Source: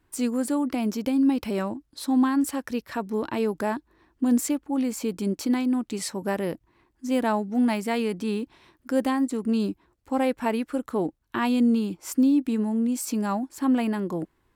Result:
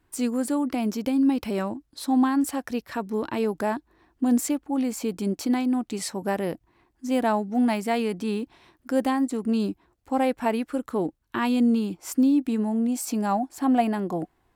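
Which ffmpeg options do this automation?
-af "asetnsamples=n=441:p=0,asendcmd='2.07 equalizer g 9.5;2.87 equalizer g -0.5;3.44 equalizer g 6.5;10.71 equalizer g -1.5;11.56 equalizer g 6;12.64 equalizer g 14.5',equalizer=f=730:t=o:w=0.22:g=2.5"

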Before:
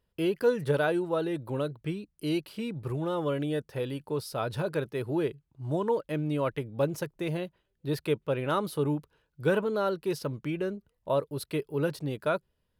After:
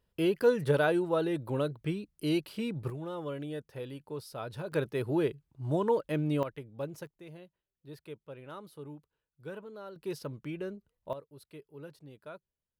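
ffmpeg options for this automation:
-af "asetnsamples=n=441:p=0,asendcmd='2.9 volume volume -8dB;4.72 volume volume 0dB;6.43 volume volume -10dB;7.07 volume volume -17dB;9.96 volume volume -6.5dB;11.13 volume volume -18dB',volume=0dB"

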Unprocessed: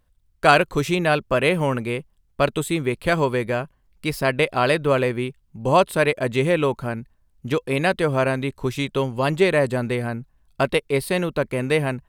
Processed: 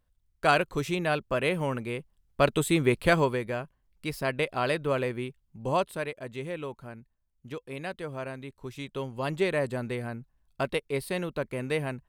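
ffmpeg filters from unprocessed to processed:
-af "volume=7dB,afade=t=in:st=1.92:d=1.04:silence=0.398107,afade=t=out:st=2.96:d=0.45:silence=0.375837,afade=t=out:st=5.63:d=0.48:silence=0.421697,afade=t=in:st=8.62:d=0.76:silence=0.446684"

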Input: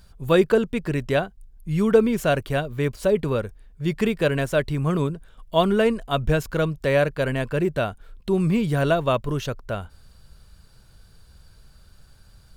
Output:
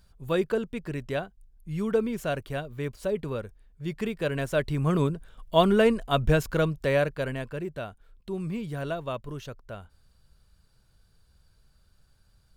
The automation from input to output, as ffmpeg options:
-af "volume=-1dB,afade=t=in:st=4.17:d=0.88:silence=0.421697,afade=t=out:st=6.45:d=1.17:silence=0.298538"

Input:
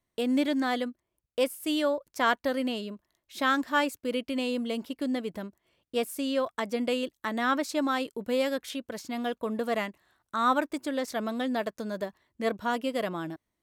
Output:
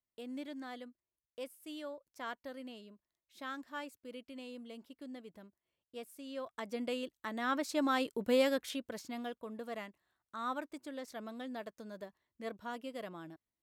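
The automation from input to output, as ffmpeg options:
-af "volume=-1dB,afade=t=in:st=6.24:d=0.54:silence=0.375837,afade=t=in:st=7.39:d=0.91:silence=0.398107,afade=t=out:st=8.3:d=1.12:silence=0.237137"

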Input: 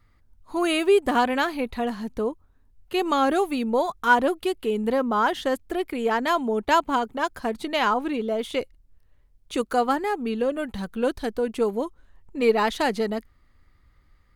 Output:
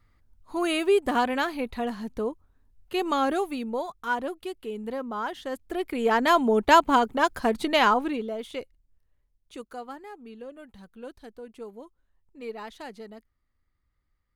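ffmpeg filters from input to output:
-af "volume=9.5dB,afade=t=out:st=3.15:d=0.8:silence=0.473151,afade=t=in:st=5.47:d=0.9:silence=0.237137,afade=t=out:st=7.76:d=0.56:silence=0.316228,afade=t=out:st=8.32:d=1.51:silence=0.316228"

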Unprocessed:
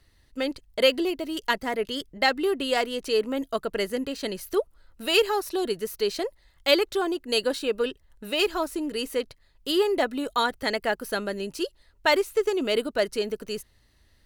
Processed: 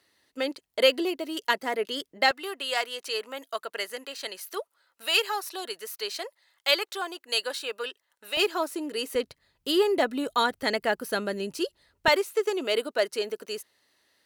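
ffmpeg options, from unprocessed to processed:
-af "asetnsamples=n=441:p=0,asendcmd='2.31 highpass f 790;8.37 highpass f 330;9.15 highpass f 100;12.08 highpass f 390',highpass=310"

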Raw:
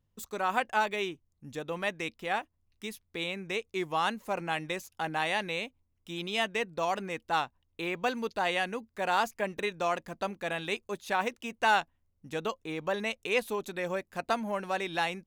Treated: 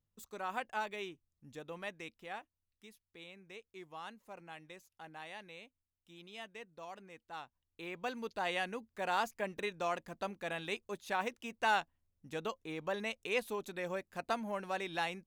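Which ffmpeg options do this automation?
-af "volume=2dB,afade=t=out:st=1.65:d=1.27:silence=0.398107,afade=t=in:st=7.34:d=1.24:silence=0.251189"

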